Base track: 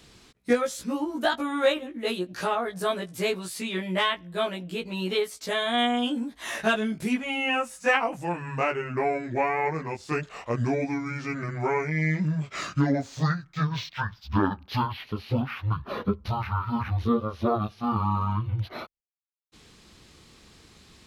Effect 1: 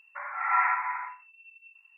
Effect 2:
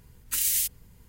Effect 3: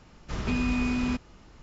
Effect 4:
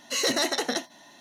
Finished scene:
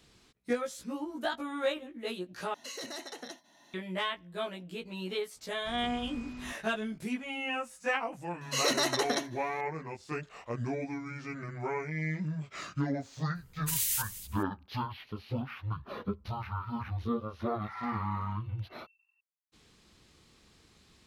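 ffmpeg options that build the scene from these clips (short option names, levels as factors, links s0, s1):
-filter_complex "[4:a]asplit=2[s0][s1];[0:a]volume=0.376[s2];[s0]alimiter=level_in=1.19:limit=0.0631:level=0:latency=1:release=487,volume=0.841[s3];[s1]equalizer=f=1100:t=o:w=0.36:g=6[s4];[2:a]aecho=1:1:245|490:0.188|0.0414[s5];[1:a]asoftclip=type=tanh:threshold=0.133[s6];[s2]asplit=2[s7][s8];[s7]atrim=end=2.544[s9];[s3]atrim=end=1.2,asetpts=PTS-STARTPTS,volume=0.447[s10];[s8]atrim=start=3.736[s11];[3:a]atrim=end=1.62,asetpts=PTS-STARTPTS,volume=0.158,afade=t=in:d=0.004:c=hsin,afade=t=out:st=1.616:d=0.004:c=hsin,adelay=5360[s12];[s4]atrim=end=1.2,asetpts=PTS-STARTPTS,volume=0.631,afade=t=in:d=0.004:c=hsin,afade=t=out:st=1.196:d=0.004:c=hsin,adelay=8410[s13];[s5]atrim=end=1.08,asetpts=PTS-STARTPTS,volume=0.531,afade=t=in:d=0.004:c=hsin,afade=t=out:st=1.076:d=0.004:c=hsin,adelay=13350[s14];[s6]atrim=end=1.97,asetpts=PTS-STARTPTS,volume=0.158,afade=t=in:d=0.004:c=hsin,afade=t=out:st=1.966:d=0.004:c=hsin,adelay=17240[s15];[s9][s10]acrossfade=d=0.004:c1=hsin:c2=hsin[s16];[s16][s11]acrossfade=d=0.004:c1=hsin:c2=hsin[s17];[s17][s12][s13][s14][s15]amix=inputs=5:normalize=0"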